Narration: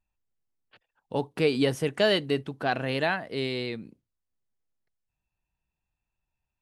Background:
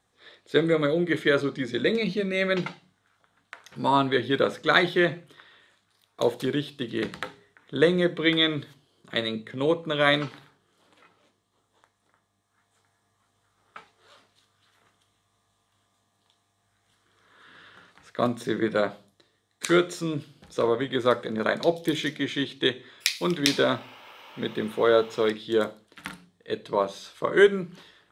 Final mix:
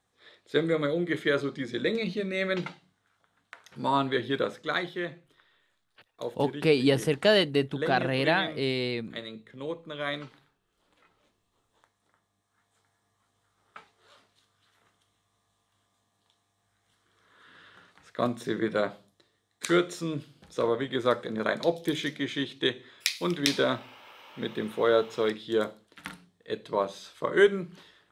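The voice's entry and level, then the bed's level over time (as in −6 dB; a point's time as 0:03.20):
5.25 s, +1.5 dB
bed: 0:04.30 −4 dB
0:04.93 −11.5 dB
0:10.52 −11.5 dB
0:11.43 −3 dB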